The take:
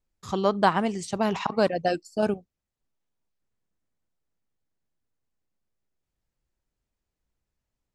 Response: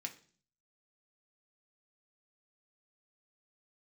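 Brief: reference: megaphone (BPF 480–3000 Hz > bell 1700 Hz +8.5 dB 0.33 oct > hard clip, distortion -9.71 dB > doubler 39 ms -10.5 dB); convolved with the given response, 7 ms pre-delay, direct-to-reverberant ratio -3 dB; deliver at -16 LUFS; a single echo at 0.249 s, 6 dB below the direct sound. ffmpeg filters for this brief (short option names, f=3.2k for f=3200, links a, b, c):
-filter_complex "[0:a]aecho=1:1:249:0.501,asplit=2[a][b];[1:a]atrim=start_sample=2205,adelay=7[c];[b][c]afir=irnorm=-1:irlink=0,volume=4.5dB[d];[a][d]amix=inputs=2:normalize=0,highpass=480,lowpass=3k,equalizer=f=1.7k:t=o:w=0.33:g=8.5,asoftclip=type=hard:threshold=-18dB,asplit=2[e][f];[f]adelay=39,volume=-10.5dB[g];[e][g]amix=inputs=2:normalize=0,volume=9dB"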